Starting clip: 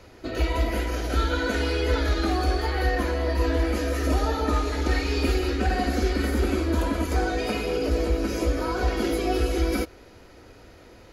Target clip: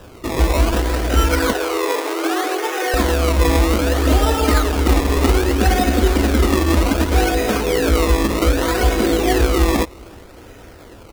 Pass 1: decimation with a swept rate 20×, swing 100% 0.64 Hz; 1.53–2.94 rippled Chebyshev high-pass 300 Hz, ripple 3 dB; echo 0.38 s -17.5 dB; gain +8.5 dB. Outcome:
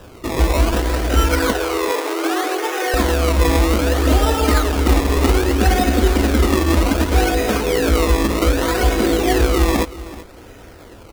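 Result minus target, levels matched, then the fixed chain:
echo-to-direct +11.5 dB
decimation with a swept rate 20×, swing 100% 0.64 Hz; 1.53–2.94 rippled Chebyshev high-pass 300 Hz, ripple 3 dB; echo 0.38 s -29 dB; gain +8.5 dB

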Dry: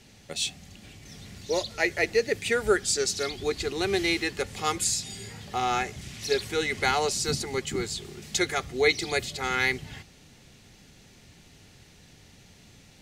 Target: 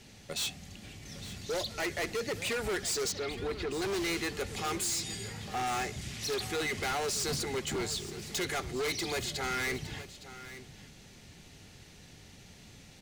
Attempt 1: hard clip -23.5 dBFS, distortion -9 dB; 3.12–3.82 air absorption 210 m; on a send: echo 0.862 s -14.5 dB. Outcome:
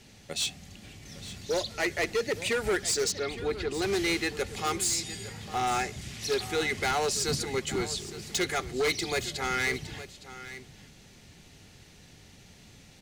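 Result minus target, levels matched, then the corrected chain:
hard clip: distortion -5 dB
hard clip -30.5 dBFS, distortion -4 dB; 3.12–3.82 air absorption 210 m; on a send: echo 0.862 s -14.5 dB

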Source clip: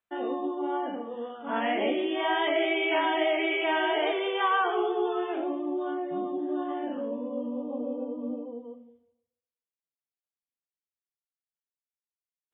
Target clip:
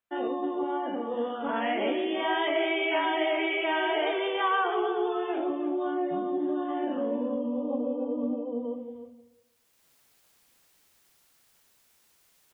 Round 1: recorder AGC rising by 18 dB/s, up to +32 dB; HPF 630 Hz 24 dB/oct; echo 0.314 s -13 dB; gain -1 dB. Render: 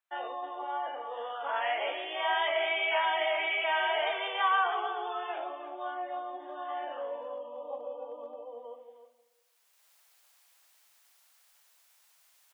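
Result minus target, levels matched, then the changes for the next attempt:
500 Hz band -3.5 dB
remove: HPF 630 Hz 24 dB/oct

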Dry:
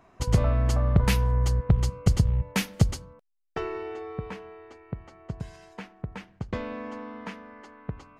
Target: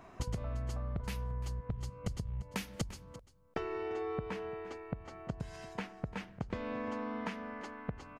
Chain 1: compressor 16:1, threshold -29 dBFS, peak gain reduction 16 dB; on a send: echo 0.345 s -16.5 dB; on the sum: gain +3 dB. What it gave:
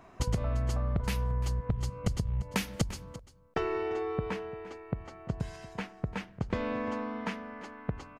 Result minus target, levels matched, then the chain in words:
compressor: peak gain reduction -7.5 dB
compressor 16:1, threshold -37 dBFS, peak gain reduction 23.5 dB; on a send: echo 0.345 s -16.5 dB; on the sum: gain +3 dB

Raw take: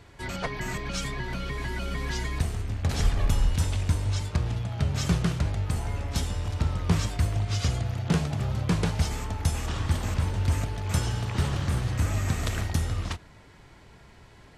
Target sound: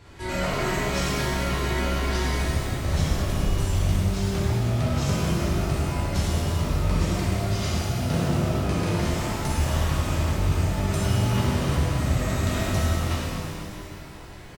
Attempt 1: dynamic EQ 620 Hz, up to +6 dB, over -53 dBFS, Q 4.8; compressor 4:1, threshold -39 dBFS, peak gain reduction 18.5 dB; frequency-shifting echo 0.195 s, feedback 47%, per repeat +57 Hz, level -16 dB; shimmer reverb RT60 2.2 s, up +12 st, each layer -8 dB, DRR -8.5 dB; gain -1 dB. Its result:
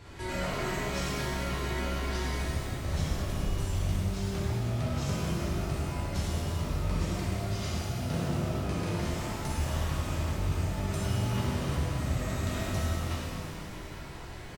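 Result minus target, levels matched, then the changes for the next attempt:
compressor: peak gain reduction +7 dB
change: compressor 4:1, threshold -29.5 dBFS, peak gain reduction 11.5 dB

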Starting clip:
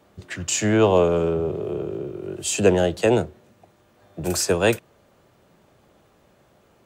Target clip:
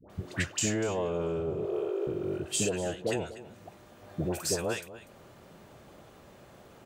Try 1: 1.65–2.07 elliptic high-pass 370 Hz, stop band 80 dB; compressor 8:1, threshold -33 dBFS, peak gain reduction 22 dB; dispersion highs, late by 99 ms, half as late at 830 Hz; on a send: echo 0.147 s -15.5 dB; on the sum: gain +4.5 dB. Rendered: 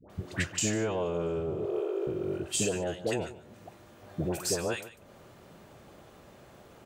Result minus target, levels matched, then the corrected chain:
echo 96 ms early
1.65–2.07 elliptic high-pass 370 Hz, stop band 80 dB; compressor 8:1, threshold -33 dBFS, peak gain reduction 22 dB; dispersion highs, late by 99 ms, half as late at 830 Hz; on a send: echo 0.243 s -15.5 dB; on the sum: gain +4.5 dB

